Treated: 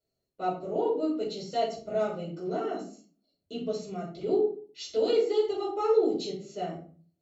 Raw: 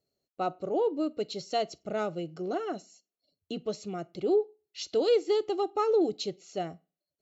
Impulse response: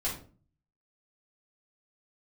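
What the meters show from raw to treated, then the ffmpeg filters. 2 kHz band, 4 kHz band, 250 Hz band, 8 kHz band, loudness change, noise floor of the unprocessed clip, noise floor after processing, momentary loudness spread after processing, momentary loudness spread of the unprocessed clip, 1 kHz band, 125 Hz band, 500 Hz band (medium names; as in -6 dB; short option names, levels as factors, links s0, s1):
-2.0 dB, -1.5 dB, +0.5 dB, no reading, +1.0 dB, under -85 dBFS, -83 dBFS, 12 LU, 12 LU, +0.5 dB, +2.0 dB, +1.0 dB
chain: -filter_complex "[1:a]atrim=start_sample=2205,asetrate=39690,aresample=44100[s0];[0:a][s0]afir=irnorm=-1:irlink=0,volume=0.473"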